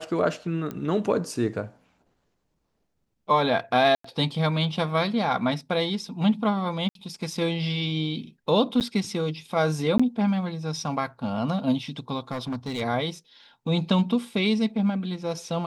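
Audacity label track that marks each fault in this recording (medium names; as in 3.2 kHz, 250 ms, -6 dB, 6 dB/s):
0.710000	0.710000	pop -20 dBFS
3.950000	4.040000	dropout 94 ms
6.890000	6.950000	dropout 62 ms
8.800000	8.810000	dropout 8.6 ms
9.980000	9.990000	dropout 15 ms
12.310000	12.820000	clipped -26 dBFS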